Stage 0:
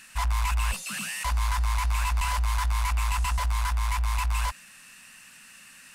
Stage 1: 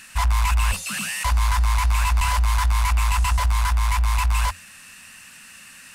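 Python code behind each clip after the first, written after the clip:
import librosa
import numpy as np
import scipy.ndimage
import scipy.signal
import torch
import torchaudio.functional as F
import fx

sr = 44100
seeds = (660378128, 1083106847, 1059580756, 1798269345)

y = fx.peak_eq(x, sr, hz=87.0, db=11.5, octaves=0.31)
y = F.gain(torch.from_numpy(y), 5.5).numpy()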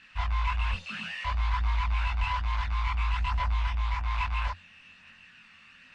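y = fx.chorus_voices(x, sr, voices=2, hz=0.59, base_ms=23, depth_ms=1.0, mix_pct=50)
y = fx.ladder_lowpass(y, sr, hz=4200.0, resonance_pct=25)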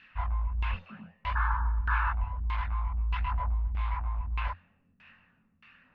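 y = fx.spec_paint(x, sr, seeds[0], shape='noise', start_s=1.35, length_s=0.78, low_hz=850.0, high_hz=1800.0, level_db=-29.0)
y = fx.filter_lfo_lowpass(y, sr, shape='saw_down', hz=1.6, low_hz=230.0, high_hz=3300.0, q=0.88)
y = F.gain(torch.from_numpy(y), -1.5).numpy()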